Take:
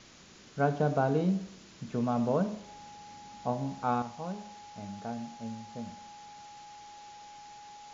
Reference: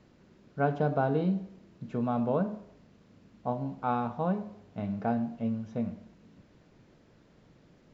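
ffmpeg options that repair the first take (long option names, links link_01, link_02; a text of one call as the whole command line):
ffmpeg -i in.wav -af "bandreject=frequency=830:width=30,afwtdn=0.0025,asetnsamples=nb_out_samples=441:pad=0,asendcmd='4.02 volume volume 9dB',volume=0dB" out.wav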